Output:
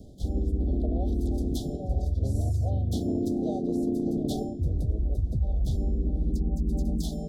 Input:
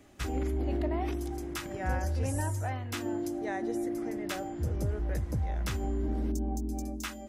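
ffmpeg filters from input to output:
ffmpeg -i in.wav -filter_complex "[0:a]asplit=4[link_01][link_02][link_03][link_04];[link_02]asetrate=33038,aresample=44100,atempo=1.33484,volume=-1dB[link_05];[link_03]asetrate=52444,aresample=44100,atempo=0.840896,volume=-13dB[link_06];[link_04]asetrate=55563,aresample=44100,atempo=0.793701,volume=-10dB[link_07];[link_01][link_05][link_06][link_07]amix=inputs=4:normalize=0,asuperstop=centerf=1600:order=20:qfactor=0.62,bass=frequency=250:gain=9,treble=frequency=4000:gain=-6,areverse,acompressor=threshold=-27dB:ratio=6,areverse,volume=3.5dB" out.wav

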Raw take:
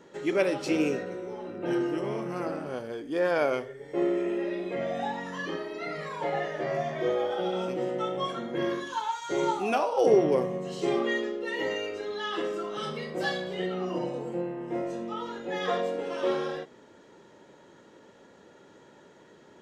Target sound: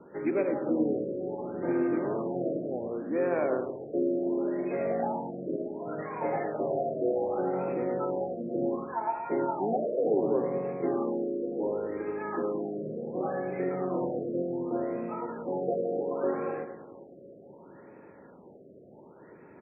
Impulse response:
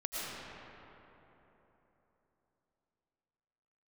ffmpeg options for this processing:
-filter_complex "[0:a]acrossover=split=200|1200|2900[link_01][link_02][link_03][link_04];[link_01]acompressor=threshold=-51dB:ratio=4[link_05];[link_02]acompressor=threshold=-27dB:ratio=4[link_06];[link_03]acompressor=threshold=-51dB:ratio=4[link_07];[link_04]acompressor=threshold=-49dB:ratio=4[link_08];[link_05][link_06][link_07][link_08]amix=inputs=4:normalize=0,lowpass=6800,lowshelf=frequency=250:gain=5,aecho=1:1:107|214|321|428|535:0.398|0.171|0.0736|0.0317|0.0136,asplit=2[link_09][link_10];[1:a]atrim=start_sample=2205,asetrate=24696,aresample=44100,lowpass=2300[link_11];[link_10][link_11]afir=irnorm=-1:irlink=0,volume=-26.5dB[link_12];[link_09][link_12]amix=inputs=2:normalize=0,asplit=2[link_13][link_14];[link_14]asetrate=33038,aresample=44100,atempo=1.33484,volume=-8dB[link_15];[link_13][link_15]amix=inputs=2:normalize=0,lowshelf=frequency=82:gain=-8.5,afftfilt=real='re*lt(b*sr/1024,680*pow(2700/680,0.5+0.5*sin(2*PI*0.68*pts/sr)))':imag='im*lt(b*sr/1024,680*pow(2700/680,0.5+0.5*sin(2*PI*0.68*pts/sr)))':win_size=1024:overlap=0.75"

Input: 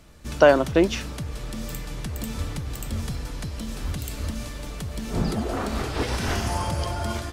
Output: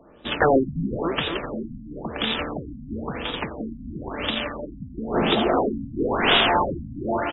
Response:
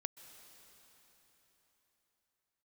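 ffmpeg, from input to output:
-filter_complex "[0:a]asplit=2[link_01][link_02];[link_02]acontrast=33,volume=2dB[link_03];[link_01][link_03]amix=inputs=2:normalize=0,acrossover=split=250 5500:gain=0.0794 1 0.0708[link_04][link_05][link_06];[link_04][link_05][link_06]amix=inputs=3:normalize=0,aexciter=amount=6.5:drive=8.7:freq=3100,aeval=exprs='0.398*(abs(mod(val(0)/0.398+3,4)-2)-1)':channel_layout=same,highshelf=frequency=8900:gain=12,adynamicsmooth=sensitivity=1:basefreq=900,aecho=1:1:259|518|777|1036|1295|1554:0.282|0.147|0.0762|0.0396|0.0206|0.0107,afftfilt=real='re*lt(b*sr/1024,260*pow(3900/260,0.5+0.5*sin(2*PI*0.98*pts/sr)))':imag='im*lt(b*sr/1024,260*pow(3900/260,0.5+0.5*sin(2*PI*0.98*pts/sr)))':win_size=1024:overlap=0.75"

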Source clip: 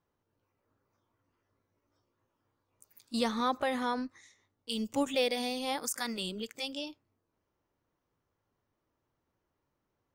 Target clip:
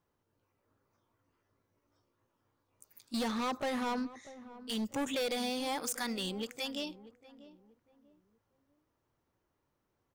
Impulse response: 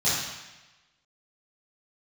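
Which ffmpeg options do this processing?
-filter_complex "[0:a]asoftclip=type=hard:threshold=-32dB,asplit=2[link_01][link_02];[link_02]adelay=641,lowpass=frequency=930:poles=1,volume=-15dB,asplit=2[link_03][link_04];[link_04]adelay=641,lowpass=frequency=930:poles=1,volume=0.33,asplit=2[link_05][link_06];[link_06]adelay=641,lowpass=frequency=930:poles=1,volume=0.33[link_07];[link_01][link_03][link_05][link_07]amix=inputs=4:normalize=0,volume=1dB"

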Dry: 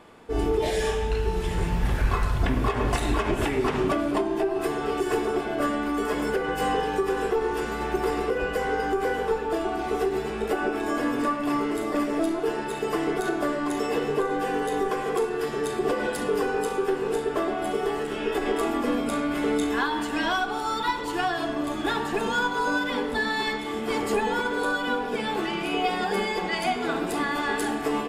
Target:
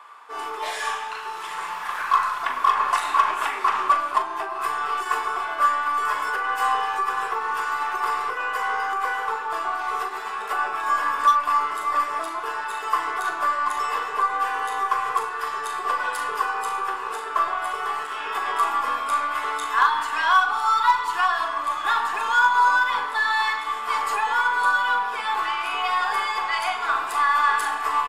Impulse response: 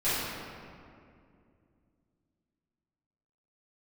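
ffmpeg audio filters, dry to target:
-filter_complex "[0:a]highpass=frequency=1100:width_type=q:width=4.9,aeval=exprs='0.335*(cos(1*acos(clip(val(0)/0.335,-1,1)))-cos(1*PI/2))+0.00376*(cos(8*acos(clip(val(0)/0.335,-1,1)))-cos(8*PI/2))':channel_layout=same,asplit=2[link_01][link_02];[link_02]adelay=40,volume=-9dB[link_03];[link_01][link_03]amix=inputs=2:normalize=0"

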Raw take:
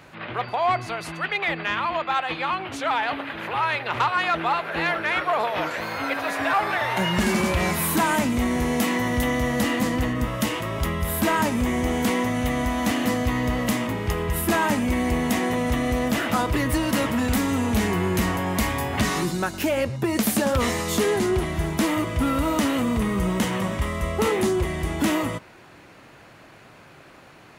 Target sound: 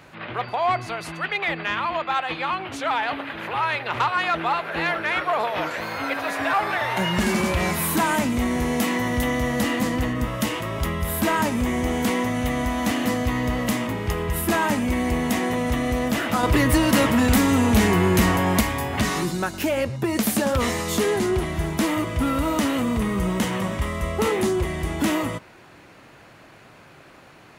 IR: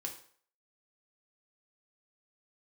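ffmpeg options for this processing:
-filter_complex "[0:a]asettb=1/sr,asplit=3[link_01][link_02][link_03];[link_01]atrim=end=16.434[link_04];[link_02]atrim=start=16.43:end=18.61,asetpts=PTS-STARTPTS,afade=type=in:duration=0.004:curve=qsin,afade=type=out:start_time=2.176:duration=0.004:curve=qsin,acontrast=21[link_05];[link_03]atrim=start=18.606[link_06];[link_04][link_05]acrossfade=duration=0.004:curve1=hsin:curve2=qsin[link_07];[link_07][link_06]acrossfade=duration=0.004:curve1=qsin:curve2=hsin"

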